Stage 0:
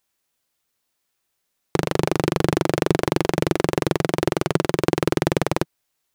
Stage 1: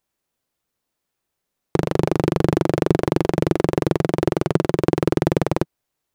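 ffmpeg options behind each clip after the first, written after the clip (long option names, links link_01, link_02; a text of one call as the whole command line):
ffmpeg -i in.wav -af "tiltshelf=frequency=1100:gain=4.5,volume=-1.5dB" out.wav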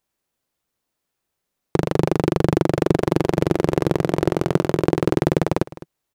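ffmpeg -i in.wav -af "aecho=1:1:208:0.141" out.wav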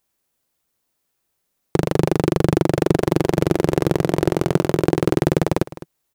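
ffmpeg -i in.wav -filter_complex "[0:a]highshelf=frequency=7000:gain=6.5,asplit=2[link_01][link_02];[link_02]asoftclip=type=hard:threshold=-12dB,volume=-6dB[link_03];[link_01][link_03]amix=inputs=2:normalize=0,volume=-1.5dB" out.wav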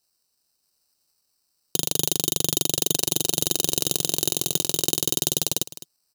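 ffmpeg -i in.wav -filter_complex "[0:a]acrossover=split=5900[link_01][link_02];[link_01]dynaudnorm=framelen=140:gausssize=9:maxgain=6.5dB[link_03];[link_03][link_02]amix=inputs=2:normalize=0,acrusher=samples=13:mix=1:aa=0.000001,aexciter=amount=10.8:drive=7.6:freq=3200,volume=-14.5dB" out.wav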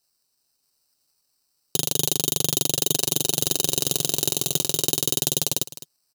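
ffmpeg -i in.wav -af "aecho=1:1:7.4:0.37" out.wav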